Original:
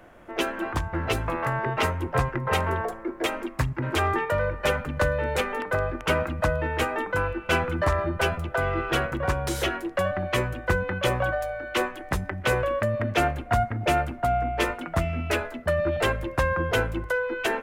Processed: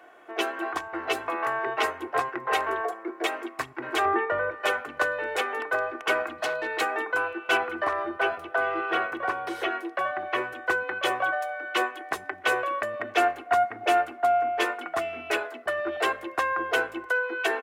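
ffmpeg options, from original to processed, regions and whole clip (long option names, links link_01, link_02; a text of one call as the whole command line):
ffmpeg -i in.wav -filter_complex "[0:a]asettb=1/sr,asplit=3[link_01][link_02][link_03];[link_01]atrim=end=4.054[link_04];[link_02]atrim=start=4.05:end=4.51,asetpts=PTS-STARTPTS,afade=type=in:duration=0.004:curve=qsin,afade=type=out:start_time=0.456:duration=0.004:curve=qsin,lowpass=2400,lowshelf=frequency=270:gain=10.5[link_05];[link_03]atrim=start=4.506[link_06];[link_04][link_05]acrossfade=duration=0.004:curve1=hsin:curve2=qsin[link_07];[link_07][link_06]acrossfade=duration=0.004:curve1=qsin:curve2=hsin,asettb=1/sr,asplit=3[link_08][link_09][link_10];[link_08]atrim=end=6.384[link_11];[link_09]atrim=start=6.38:end=6.81,asetpts=PTS-STARTPTS,afade=type=in:duration=0.004:curve=qsin,afade=type=out:start_time=0.426:duration=0.004:curve=qsin,highpass=110,equalizer=frequency=4100:width=5.2:gain=15,aeval=exprs='0.0944*(abs(mod(val(0)/0.0944+3,4)-2)-1)':channel_layout=same[link_12];[link_10]atrim=start=6.806[link_13];[link_11][link_12]acrossfade=duration=0.004:curve1=hsin:curve2=qsin[link_14];[link_14][link_13]acrossfade=duration=0.004:curve1=qsin:curve2=hsin,asettb=1/sr,asplit=3[link_15][link_16][link_17];[link_15]atrim=end=7.574[link_18];[link_16]atrim=start=7.57:end=10.53,asetpts=PTS-STARTPTS,afade=type=in:duration=0.004:curve=qsin,afade=type=out:start_time=2.956:duration=0.004:curve=qsin,bandreject=frequency=7200:width=8.6,acrossover=split=2800[link_19][link_20];[link_20]acompressor=threshold=-48dB:ratio=4:attack=1:release=60[link_21];[link_19][link_21]amix=inputs=2:normalize=0[link_22];[link_17]atrim=start=10.526[link_23];[link_18][link_22]acrossfade=duration=0.004:curve1=hsin:curve2=qsin[link_24];[link_24][link_23]acrossfade=duration=0.004:curve1=qsin:curve2=hsin,highpass=470,highshelf=frequency=4700:gain=-5.5,aecho=1:1:2.7:0.57" out.wav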